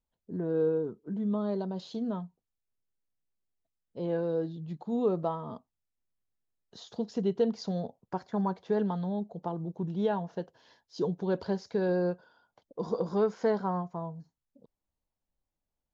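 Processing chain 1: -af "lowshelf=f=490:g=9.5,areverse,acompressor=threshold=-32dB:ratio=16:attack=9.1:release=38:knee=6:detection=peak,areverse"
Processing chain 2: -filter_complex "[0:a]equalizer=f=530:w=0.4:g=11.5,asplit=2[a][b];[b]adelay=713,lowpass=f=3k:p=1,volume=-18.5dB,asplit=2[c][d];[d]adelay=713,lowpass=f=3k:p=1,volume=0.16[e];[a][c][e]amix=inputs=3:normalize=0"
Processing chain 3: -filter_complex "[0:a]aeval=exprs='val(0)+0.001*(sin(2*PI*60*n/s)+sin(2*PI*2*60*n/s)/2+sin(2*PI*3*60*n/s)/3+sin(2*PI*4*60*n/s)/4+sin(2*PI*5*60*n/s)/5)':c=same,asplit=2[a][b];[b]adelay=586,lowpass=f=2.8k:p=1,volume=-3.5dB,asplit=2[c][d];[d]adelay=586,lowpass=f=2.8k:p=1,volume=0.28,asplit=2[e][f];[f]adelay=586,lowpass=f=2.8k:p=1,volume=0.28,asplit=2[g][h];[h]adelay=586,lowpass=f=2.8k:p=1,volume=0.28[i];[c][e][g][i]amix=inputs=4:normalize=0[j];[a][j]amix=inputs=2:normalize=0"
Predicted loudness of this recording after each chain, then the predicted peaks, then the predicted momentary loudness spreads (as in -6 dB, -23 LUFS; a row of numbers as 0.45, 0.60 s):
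-35.5, -22.5, -31.5 LUFS; -22.0, -5.5, -15.5 dBFS; 8, 17, 15 LU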